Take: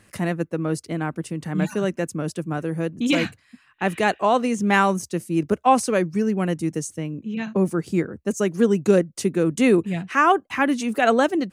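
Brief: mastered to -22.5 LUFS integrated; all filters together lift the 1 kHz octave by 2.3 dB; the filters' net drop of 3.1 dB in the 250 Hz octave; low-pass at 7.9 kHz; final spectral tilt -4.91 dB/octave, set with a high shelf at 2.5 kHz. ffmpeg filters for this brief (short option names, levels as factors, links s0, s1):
-af "lowpass=7900,equalizer=f=250:t=o:g=-4.5,equalizer=f=1000:t=o:g=4,highshelf=f=2500:g=-4.5,volume=1.06"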